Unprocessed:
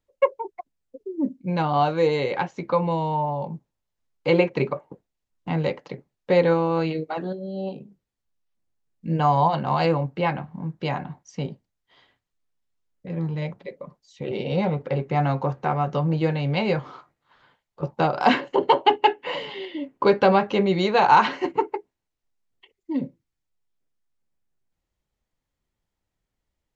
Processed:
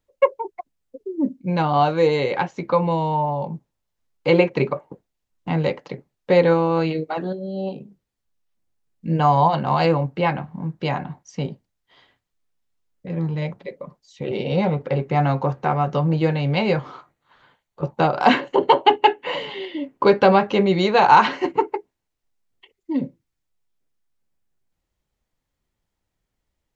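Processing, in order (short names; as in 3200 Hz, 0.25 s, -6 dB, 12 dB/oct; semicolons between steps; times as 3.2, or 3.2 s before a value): 16.92–19.65 notch 5100 Hz, Q 9.9; gain +3 dB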